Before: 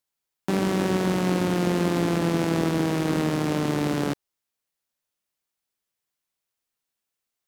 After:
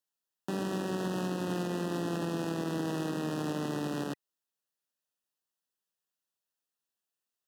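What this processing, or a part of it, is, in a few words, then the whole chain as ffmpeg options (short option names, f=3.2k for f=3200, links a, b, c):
PA system with an anti-feedback notch: -af "highpass=130,asuperstop=centerf=2200:order=20:qfactor=4.4,alimiter=limit=-18.5dB:level=0:latency=1:release=97,volume=-6dB"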